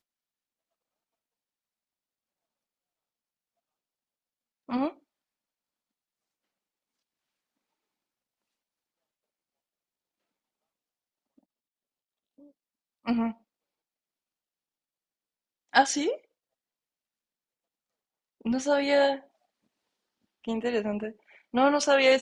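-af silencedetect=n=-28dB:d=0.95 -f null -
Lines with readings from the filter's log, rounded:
silence_start: 0.00
silence_end: 4.71 | silence_duration: 4.71
silence_start: 4.88
silence_end: 13.08 | silence_duration: 8.20
silence_start: 13.30
silence_end: 15.75 | silence_duration: 2.45
silence_start: 16.13
silence_end: 18.46 | silence_duration: 2.33
silence_start: 19.15
silence_end: 20.48 | silence_duration: 1.33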